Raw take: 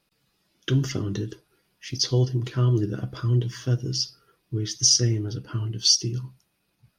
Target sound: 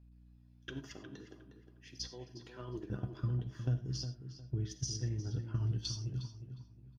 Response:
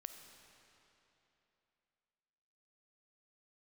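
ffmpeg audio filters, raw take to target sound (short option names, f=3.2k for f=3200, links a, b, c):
-filter_complex "[0:a]asettb=1/sr,asplit=3[a][b][c];[a]atrim=end=0.694[d];[b]atrim=start=0.69:end=2.9,asetpts=PTS-STARTPTS,afade=t=in:d=0.004:c=qsin,afade=t=out:st=2.206:d=0.004:c=qsin,highpass=360[e];[c]atrim=start=2.896[f];[d][e]acrossfade=d=0.004:c1=hsin:c2=qsin[g];[g][f]acrossfade=d=0.004:c1=qsin:c2=hsin,acompressor=threshold=-30dB:ratio=8,aeval=exprs='val(0)+0.00501*(sin(2*PI*60*n/s)+sin(2*PI*2*60*n/s)/2+sin(2*PI*3*60*n/s)/3+sin(2*PI*4*60*n/s)/4+sin(2*PI*5*60*n/s)/5)':c=same,aecho=1:1:1.2:0.34,agate=range=-11dB:threshold=-33dB:ratio=16:detection=peak,highshelf=f=3.4k:g=-9.5,asplit=2[h][i];[i]adelay=359,lowpass=f=2.4k:p=1,volume=-8.5dB,asplit=2[j][k];[k]adelay=359,lowpass=f=2.4k:p=1,volume=0.31,asplit=2[l][m];[m]adelay=359,lowpass=f=2.4k:p=1,volume=0.31,asplit=2[n][o];[o]adelay=359,lowpass=f=2.4k:p=1,volume=0.31[p];[h][j][l][n][p]amix=inputs=5:normalize=0[q];[1:a]atrim=start_sample=2205,afade=t=out:st=0.16:d=0.01,atrim=end_sample=7497[r];[q][r]afir=irnorm=-1:irlink=0,volume=2.5dB"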